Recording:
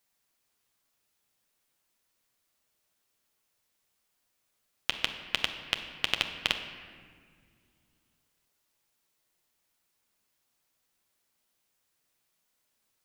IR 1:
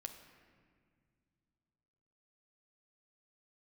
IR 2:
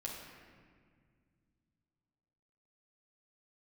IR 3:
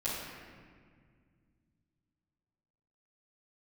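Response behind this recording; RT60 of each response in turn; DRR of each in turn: 1; non-exponential decay, 1.9 s, 1.9 s; 5.0, −3.5, −13.0 decibels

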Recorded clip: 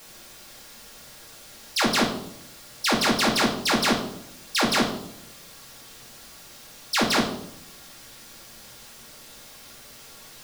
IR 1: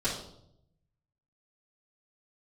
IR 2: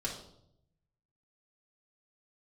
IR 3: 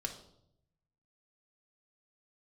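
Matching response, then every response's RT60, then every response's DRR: 2; 0.75, 0.75, 0.75 seconds; −11.0, −4.5, 2.0 decibels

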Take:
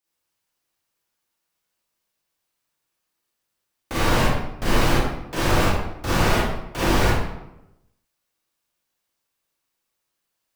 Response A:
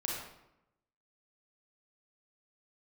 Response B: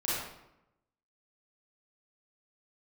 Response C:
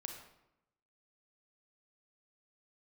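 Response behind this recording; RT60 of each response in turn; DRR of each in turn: B; 0.85, 0.85, 0.85 seconds; −3.0, −9.0, 3.0 decibels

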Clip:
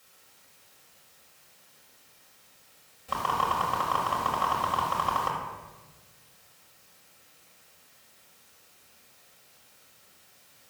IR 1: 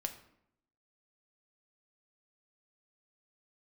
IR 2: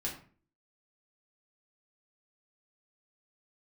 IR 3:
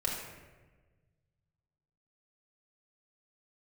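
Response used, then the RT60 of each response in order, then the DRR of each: 3; 0.75, 0.45, 1.3 seconds; 5.0, −3.5, −4.0 decibels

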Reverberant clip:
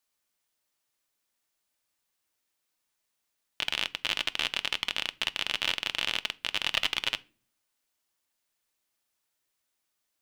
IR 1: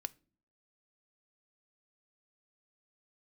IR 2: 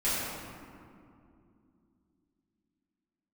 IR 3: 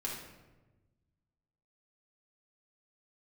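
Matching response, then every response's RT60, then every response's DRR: 1; non-exponential decay, 2.6 s, 1.2 s; 13.0, −13.0, −4.5 decibels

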